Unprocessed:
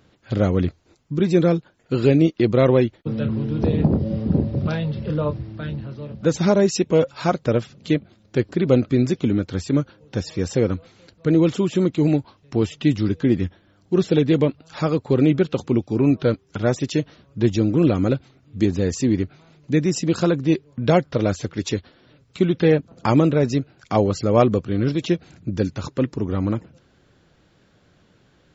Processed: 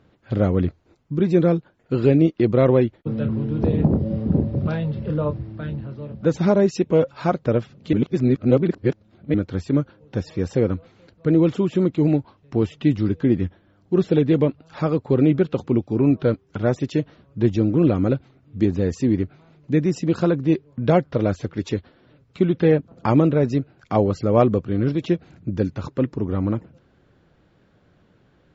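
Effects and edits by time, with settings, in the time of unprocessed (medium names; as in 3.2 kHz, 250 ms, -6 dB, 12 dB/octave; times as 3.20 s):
7.93–9.34 s: reverse
whole clip: low-pass 1.8 kHz 6 dB/octave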